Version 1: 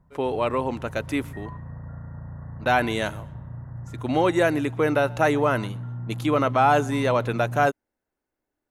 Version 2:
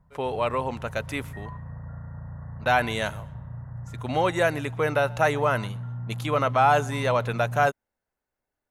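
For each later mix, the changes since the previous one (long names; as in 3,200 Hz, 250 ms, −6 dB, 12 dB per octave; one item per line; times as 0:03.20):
master: add parametric band 310 Hz −10 dB 0.72 octaves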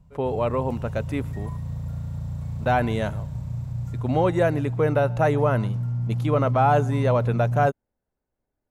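background: remove linear-phase brick-wall low-pass 2,000 Hz
master: add tilt shelving filter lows +8 dB, about 780 Hz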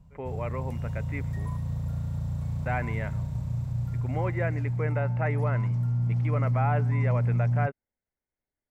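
speech: add transistor ladder low-pass 2,300 Hz, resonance 70%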